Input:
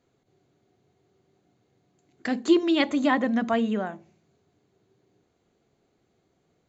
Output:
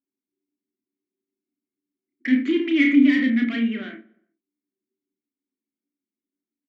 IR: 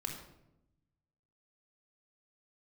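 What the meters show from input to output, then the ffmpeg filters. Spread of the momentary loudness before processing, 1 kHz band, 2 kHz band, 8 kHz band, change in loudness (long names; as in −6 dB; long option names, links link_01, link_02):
11 LU, below −15 dB, +6.0 dB, can't be measured, +5.0 dB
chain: -filter_complex "[0:a]equalizer=frequency=125:width_type=o:width=1:gain=-9,equalizer=frequency=250:width_type=o:width=1:gain=7,equalizer=frequency=1000:width_type=o:width=1:gain=5,equalizer=frequency=2000:width_type=o:width=1:gain=11,equalizer=frequency=4000:width_type=o:width=1:gain=-8,asplit=2[link_01][link_02];[link_02]aecho=0:1:52|73:0.211|0.158[link_03];[link_01][link_03]amix=inputs=2:normalize=0,asplit=2[link_04][link_05];[link_05]highpass=frequency=720:poles=1,volume=23dB,asoftclip=type=tanh:threshold=-2.5dB[link_06];[link_04][link_06]amix=inputs=2:normalize=0,lowpass=frequency=3300:poles=1,volume=-6dB,anlmdn=39.8,asplit=3[link_07][link_08][link_09];[link_07]bandpass=frequency=270:width_type=q:width=8,volume=0dB[link_10];[link_08]bandpass=frequency=2290:width_type=q:width=8,volume=-6dB[link_11];[link_09]bandpass=frequency=3010:width_type=q:width=8,volume=-9dB[link_12];[link_10][link_11][link_12]amix=inputs=3:normalize=0,asplit=2[link_13][link_14];[link_14]adelay=31,volume=-5dB[link_15];[link_13][link_15]amix=inputs=2:normalize=0,asplit=2[link_16][link_17];[link_17]adelay=120,lowpass=frequency=1900:poles=1,volume=-21dB,asplit=2[link_18][link_19];[link_19]adelay=120,lowpass=frequency=1900:poles=1,volume=0.45,asplit=2[link_20][link_21];[link_21]adelay=120,lowpass=frequency=1900:poles=1,volume=0.45[link_22];[link_18][link_20][link_22]amix=inputs=3:normalize=0[link_23];[link_16][link_23]amix=inputs=2:normalize=0"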